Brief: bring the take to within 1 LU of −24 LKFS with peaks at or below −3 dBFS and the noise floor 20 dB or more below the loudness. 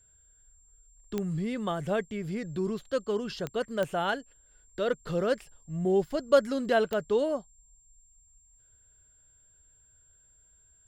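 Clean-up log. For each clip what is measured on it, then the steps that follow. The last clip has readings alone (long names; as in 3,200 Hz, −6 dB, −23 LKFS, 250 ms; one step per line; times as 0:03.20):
number of clicks 4; interfering tone 7,400 Hz; level of the tone −60 dBFS; integrated loudness −30.0 LKFS; sample peak −9.5 dBFS; target loudness −24.0 LKFS
→ click removal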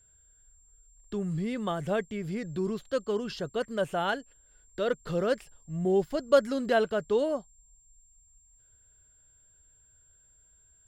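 number of clicks 0; interfering tone 7,400 Hz; level of the tone −60 dBFS
→ notch filter 7,400 Hz, Q 30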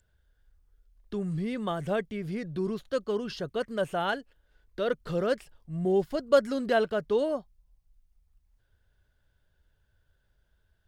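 interfering tone none found; integrated loudness −30.0 LKFS; sample peak −9.5 dBFS; target loudness −24.0 LKFS
→ level +6 dB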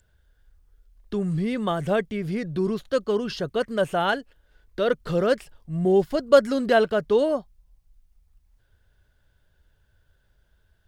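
integrated loudness −24.0 LKFS; sample peak −3.5 dBFS; background noise floor −66 dBFS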